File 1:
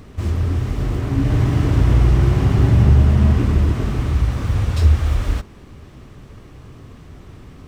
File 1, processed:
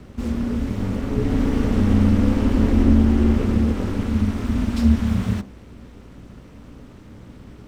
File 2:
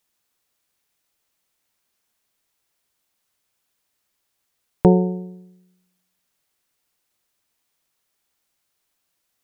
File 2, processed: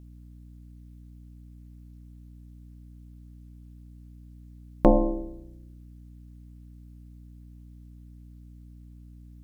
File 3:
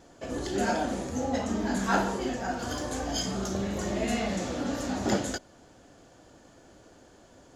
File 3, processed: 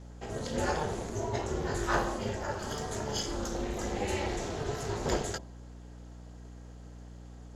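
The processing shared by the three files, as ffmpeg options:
-af "aeval=exprs='val(0)*sin(2*PI*150*n/s)':c=same,bandreject=f=66.04:t=h:w=4,bandreject=f=132.08:t=h:w=4,bandreject=f=198.12:t=h:w=4,bandreject=f=264.16:t=h:w=4,bandreject=f=330.2:t=h:w=4,bandreject=f=396.24:t=h:w=4,bandreject=f=462.28:t=h:w=4,bandreject=f=528.32:t=h:w=4,bandreject=f=594.36:t=h:w=4,bandreject=f=660.4:t=h:w=4,bandreject=f=726.44:t=h:w=4,bandreject=f=792.48:t=h:w=4,bandreject=f=858.52:t=h:w=4,bandreject=f=924.56:t=h:w=4,bandreject=f=990.6:t=h:w=4,bandreject=f=1.05664k:t=h:w=4,bandreject=f=1.12268k:t=h:w=4,aeval=exprs='val(0)+0.00501*(sin(2*PI*60*n/s)+sin(2*PI*2*60*n/s)/2+sin(2*PI*3*60*n/s)/3+sin(2*PI*4*60*n/s)/4+sin(2*PI*5*60*n/s)/5)':c=same"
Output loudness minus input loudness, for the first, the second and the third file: -3.0, -6.5, -3.5 LU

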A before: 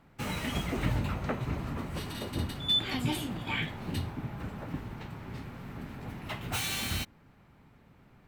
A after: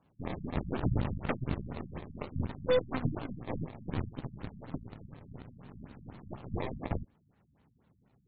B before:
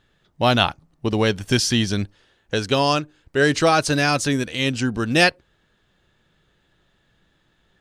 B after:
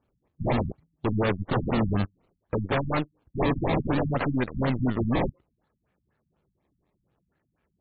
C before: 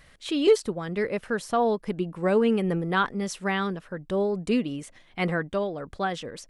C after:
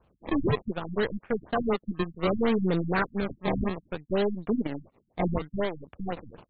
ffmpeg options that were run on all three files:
-af "highpass=f=49:w=0.5412,highpass=f=49:w=1.3066,acrusher=samples=21:mix=1:aa=0.000001:lfo=1:lforange=21:lforate=0.63,aeval=exprs='0.126*(abs(mod(val(0)/0.126+3,4)-2)-1)':c=same,aeval=exprs='0.133*(cos(1*acos(clip(val(0)/0.133,-1,1)))-cos(1*PI/2))+0.00668*(cos(5*acos(clip(val(0)/0.133,-1,1)))-cos(5*PI/2))+0.0133*(cos(6*acos(clip(val(0)/0.133,-1,1)))-cos(6*PI/2))+0.0168*(cos(7*acos(clip(val(0)/0.133,-1,1)))-cos(7*PI/2))':c=same,afftfilt=real='re*lt(b*sr/1024,230*pow(4600/230,0.5+0.5*sin(2*PI*4.1*pts/sr)))':imag='im*lt(b*sr/1024,230*pow(4600/230,0.5+0.5*sin(2*PI*4.1*pts/sr)))':win_size=1024:overlap=0.75"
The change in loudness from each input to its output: -2.5, -7.5, -3.0 LU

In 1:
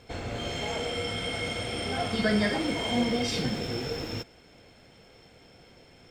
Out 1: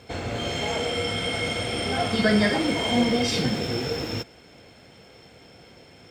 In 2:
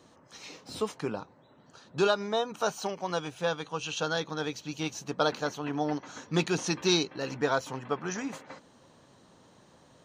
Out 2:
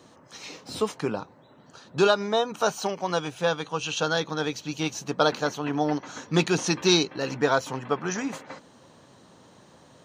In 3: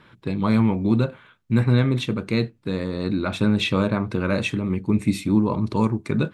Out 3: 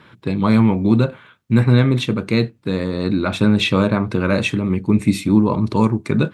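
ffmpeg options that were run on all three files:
-af "highpass=61,volume=5dB"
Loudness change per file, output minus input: +5.0, +5.0, +5.0 LU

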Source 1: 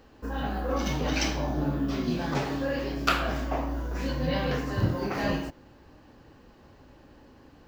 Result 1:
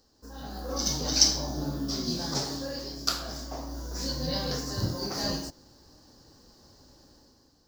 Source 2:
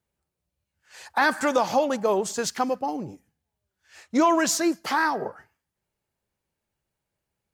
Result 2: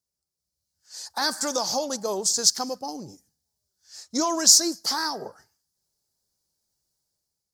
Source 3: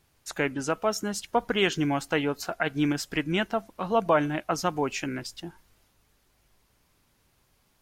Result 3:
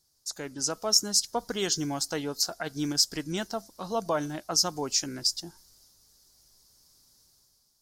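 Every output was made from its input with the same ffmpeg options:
-af "dynaudnorm=f=160:g=7:m=9dB,highshelf=f=3.6k:t=q:w=3:g=12,volume=-13dB"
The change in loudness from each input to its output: 0.0, +2.5, 0.0 LU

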